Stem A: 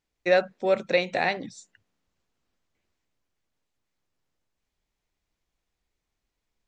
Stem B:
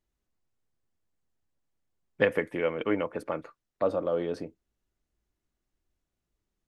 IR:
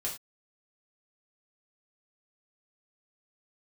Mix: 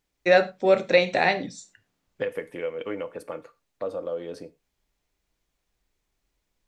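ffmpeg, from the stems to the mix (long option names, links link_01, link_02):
-filter_complex "[0:a]volume=1dB,asplit=2[link_01][link_02];[link_02]volume=-8.5dB[link_03];[1:a]equalizer=frequency=490:width_type=o:width=0.22:gain=9,acompressor=threshold=-22dB:ratio=2.5,highshelf=frequency=3700:gain=10.5,volume=-7dB,asplit=2[link_04][link_05];[link_05]volume=-12.5dB[link_06];[2:a]atrim=start_sample=2205[link_07];[link_03][link_06]amix=inputs=2:normalize=0[link_08];[link_08][link_07]afir=irnorm=-1:irlink=0[link_09];[link_01][link_04][link_09]amix=inputs=3:normalize=0"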